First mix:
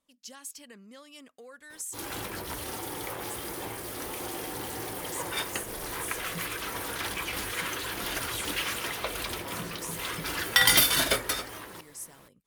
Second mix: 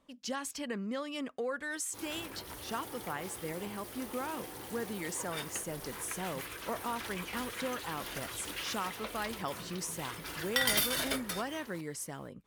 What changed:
speech: remove pre-emphasis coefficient 0.8; background -9.0 dB

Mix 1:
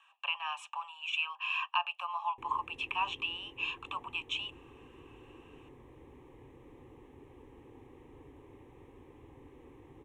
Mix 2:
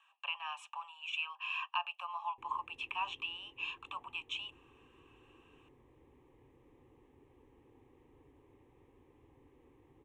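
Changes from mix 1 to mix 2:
speech -4.5 dB; background -9.5 dB

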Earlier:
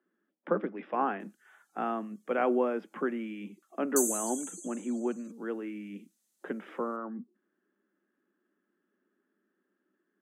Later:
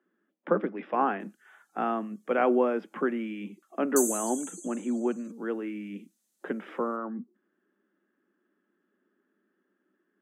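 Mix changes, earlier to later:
speech +3.5 dB; reverb: on, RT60 1.1 s

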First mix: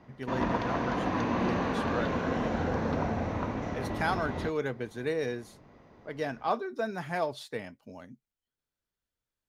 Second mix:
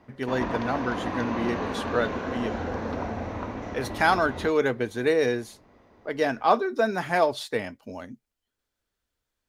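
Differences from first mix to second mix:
speech +9.0 dB; master: add bell 150 Hz -10 dB 0.43 oct

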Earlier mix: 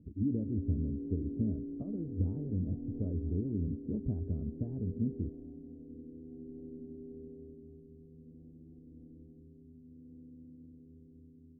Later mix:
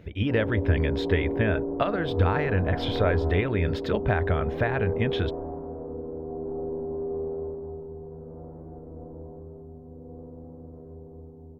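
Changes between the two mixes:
background +4.5 dB; master: remove ladder low-pass 300 Hz, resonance 55%

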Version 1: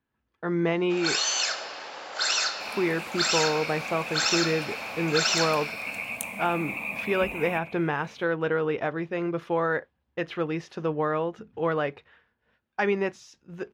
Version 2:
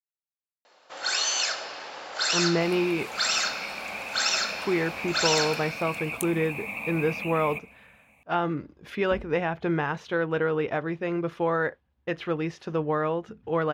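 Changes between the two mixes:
speech: entry +1.90 s; second sound: send -8.0 dB; master: add low shelf 64 Hz +10.5 dB

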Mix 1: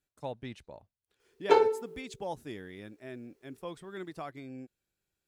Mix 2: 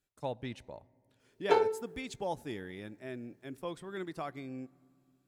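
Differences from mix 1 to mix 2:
background -4.5 dB; reverb: on, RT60 2.8 s

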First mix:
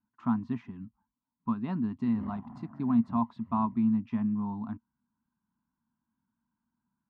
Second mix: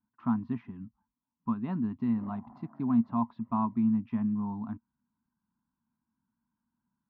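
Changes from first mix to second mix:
speech: add air absorption 230 m; background: add band-pass 650 Hz, Q 0.88

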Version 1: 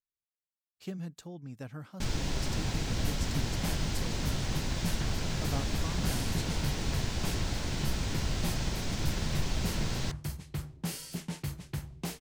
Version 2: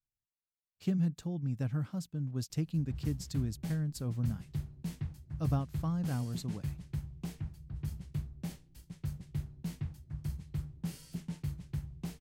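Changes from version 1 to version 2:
first sound: muted; second sound -11.0 dB; master: add tone controls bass +12 dB, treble -1 dB

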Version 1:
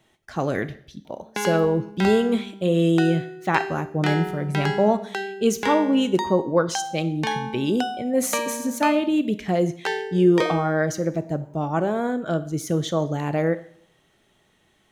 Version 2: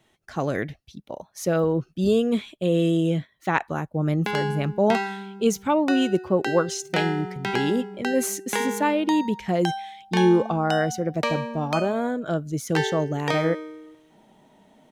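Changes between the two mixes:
background: entry +2.90 s; reverb: off

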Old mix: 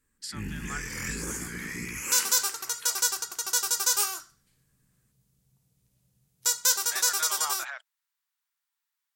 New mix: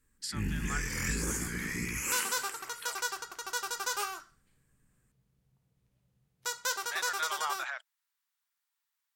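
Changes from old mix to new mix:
second sound: add tone controls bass -6 dB, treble -15 dB; master: add low shelf 92 Hz +6.5 dB

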